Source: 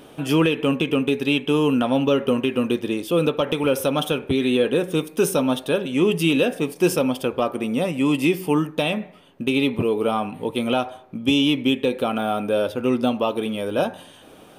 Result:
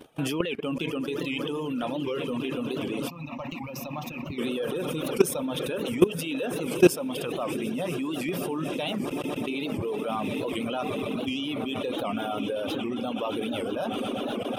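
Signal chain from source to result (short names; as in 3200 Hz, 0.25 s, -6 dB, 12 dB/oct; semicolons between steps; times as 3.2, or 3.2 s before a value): swelling echo 0.124 s, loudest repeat 8, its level -17 dB; level quantiser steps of 15 dB; 3.08–4.39 fixed phaser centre 2200 Hz, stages 8; reverb removal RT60 1.3 s; record warp 78 rpm, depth 160 cents; gain +3 dB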